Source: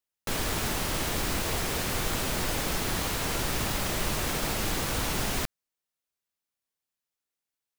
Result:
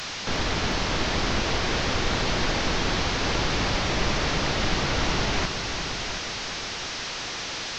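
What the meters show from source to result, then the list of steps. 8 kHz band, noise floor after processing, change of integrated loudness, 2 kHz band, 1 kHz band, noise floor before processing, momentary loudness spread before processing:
-1.0 dB, -33 dBFS, +3.0 dB, +6.5 dB, +6.0 dB, under -85 dBFS, 1 LU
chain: one-bit delta coder 32 kbps, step -30.5 dBFS; multi-head delay 360 ms, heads first and second, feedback 44%, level -10.5 dB; trim +4 dB

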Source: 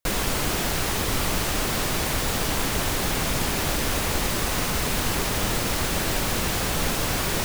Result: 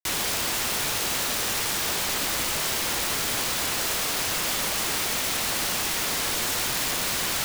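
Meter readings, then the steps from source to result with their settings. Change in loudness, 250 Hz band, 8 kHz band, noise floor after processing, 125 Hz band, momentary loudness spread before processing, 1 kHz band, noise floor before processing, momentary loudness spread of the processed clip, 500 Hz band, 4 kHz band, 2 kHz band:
0.0 dB, -8.0 dB, +2.0 dB, -27 dBFS, -11.5 dB, 0 LU, -2.5 dB, -26 dBFS, 0 LU, -5.5 dB, +1.5 dB, -0.5 dB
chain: steep low-pass 6.1 kHz 36 dB/octave; bass shelf 180 Hz +5 dB; integer overflow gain 25 dB; bit crusher 6-bit; trim +2.5 dB

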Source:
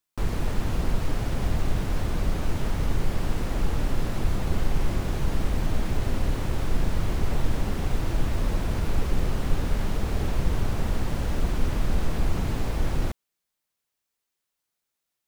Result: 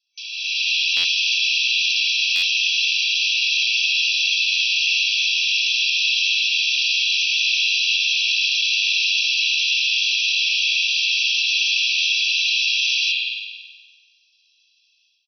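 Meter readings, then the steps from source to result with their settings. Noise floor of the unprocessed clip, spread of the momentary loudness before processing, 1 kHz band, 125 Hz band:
-83 dBFS, 1 LU, under -20 dB, under -40 dB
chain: comb filter that takes the minimum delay 1.5 ms; comb 1.5 ms, depth 48%; FFT band-pass 2.3–6 kHz; spring tank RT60 1.4 s, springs 39 ms, chirp 20 ms, DRR -5 dB; in parallel at +2 dB: peak limiter -39 dBFS, peak gain reduction 10 dB; on the sum: treble shelf 4.1 kHz -8.5 dB; level rider gain up to 13.5 dB; tilt EQ +4.5 dB/octave; buffer glitch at 0.96/2.35 s, samples 512, times 6

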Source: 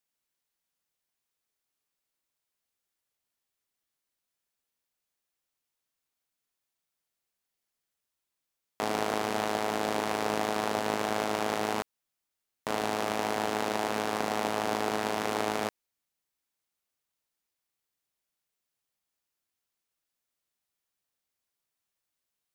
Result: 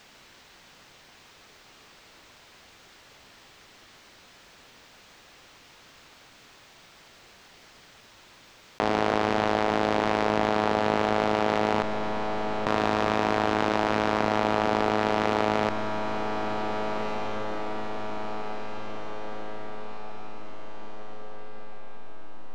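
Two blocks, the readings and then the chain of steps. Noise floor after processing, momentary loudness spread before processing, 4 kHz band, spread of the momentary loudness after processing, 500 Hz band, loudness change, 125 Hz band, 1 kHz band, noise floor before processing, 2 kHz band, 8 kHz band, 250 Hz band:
-54 dBFS, 3 LU, +3.0 dB, 18 LU, +6.5 dB, +4.0 dB, +9.5 dB, +6.5 dB, under -85 dBFS, +5.5 dB, -5.0 dB, +7.5 dB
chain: treble shelf 8.8 kHz +9 dB; in parallel at -5 dB: hysteresis with a dead band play -24.5 dBFS; on the sum: distance through air 180 m; echo that smears into a reverb 1637 ms, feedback 51%, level -14 dB; level flattener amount 70%

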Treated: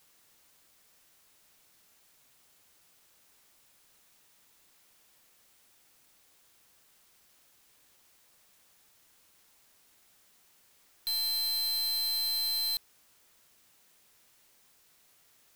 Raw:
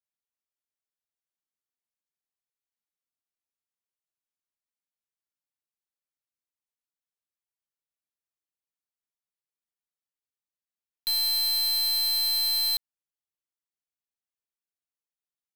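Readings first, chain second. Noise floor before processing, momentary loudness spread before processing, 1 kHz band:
under -85 dBFS, 5 LU, -5.0 dB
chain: added noise white -59 dBFS; trim -5.5 dB

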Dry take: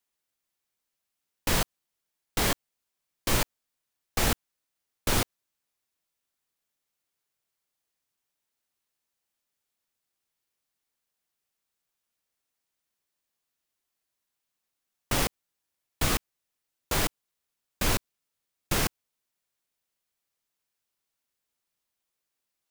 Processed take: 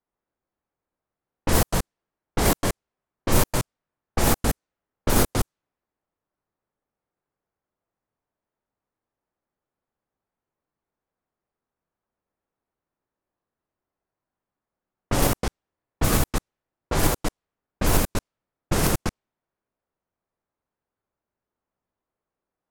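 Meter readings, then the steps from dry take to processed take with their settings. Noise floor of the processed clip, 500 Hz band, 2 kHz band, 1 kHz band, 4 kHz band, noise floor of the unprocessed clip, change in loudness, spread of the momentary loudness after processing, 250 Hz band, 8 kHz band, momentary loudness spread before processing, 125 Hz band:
under -85 dBFS, +8.0 dB, +2.0 dB, +6.0 dB, +0.5 dB, -84 dBFS, +4.0 dB, 11 LU, +9.0 dB, +4.5 dB, 8 LU, +9.0 dB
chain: chunks repeated in reverse 129 ms, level -1 dB; peaking EQ 3.1 kHz -9 dB 2.4 oct; level-controlled noise filter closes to 1.5 kHz, open at -22.5 dBFS; trim +6.5 dB

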